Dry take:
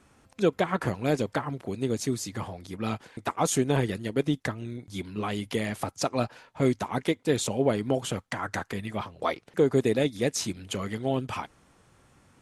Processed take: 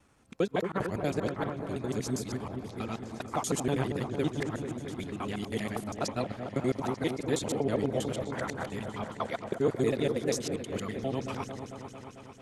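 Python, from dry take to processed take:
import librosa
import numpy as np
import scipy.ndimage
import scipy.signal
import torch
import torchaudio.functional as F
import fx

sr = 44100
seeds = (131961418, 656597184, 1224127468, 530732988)

y = fx.local_reverse(x, sr, ms=80.0)
y = fx.vibrato(y, sr, rate_hz=12.0, depth_cents=36.0)
y = fx.echo_opening(y, sr, ms=223, hz=750, octaves=1, feedback_pct=70, wet_db=-6)
y = F.gain(torch.from_numpy(y), -5.0).numpy()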